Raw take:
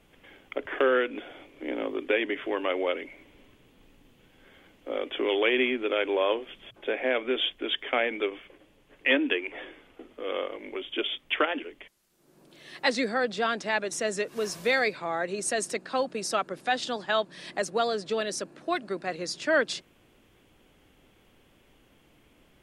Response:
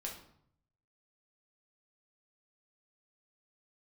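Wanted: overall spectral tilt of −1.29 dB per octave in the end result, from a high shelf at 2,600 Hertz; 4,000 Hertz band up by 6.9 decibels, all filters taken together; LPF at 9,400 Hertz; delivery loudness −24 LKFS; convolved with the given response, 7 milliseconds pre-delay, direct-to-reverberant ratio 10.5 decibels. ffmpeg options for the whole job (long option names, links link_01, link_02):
-filter_complex "[0:a]lowpass=9400,highshelf=frequency=2600:gain=5,equalizer=frequency=4000:width_type=o:gain=5,asplit=2[link_01][link_02];[1:a]atrim=start_sample=2205,adelay=7[link_03];[link_02][link_03]afir=irnorm=-1:irlink=0,volume=-9.5dB[link_04];[link_01][link_04]amix=inputs=2:normalize=0,volume=1.5dB"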